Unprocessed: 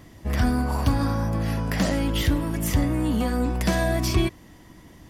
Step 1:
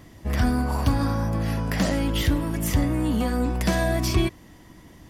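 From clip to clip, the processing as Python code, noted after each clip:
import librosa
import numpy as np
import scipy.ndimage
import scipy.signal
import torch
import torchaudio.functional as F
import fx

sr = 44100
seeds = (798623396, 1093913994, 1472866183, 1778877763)

y = x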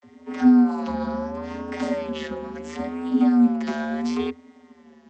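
y = fx.vocoder(x, sr, bands=32, carrier='square', carrier_hz=80.0)
y = fx.vibrato(y, sr, rate_hz=0.73, depth_cents=99.0)
y = F.gain(torch.from_numpy(y), 4.0).numpy()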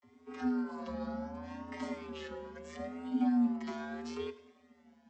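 y = fx.echo_feedback(x, sr, ms=101, feedback_pct=52, wet_db=-16.5)
y = fx.comb_cascade(y, sr, direction='rising', hz=0.55)
y = F.gain(torch.from_numpy(y), -7.5).numpy()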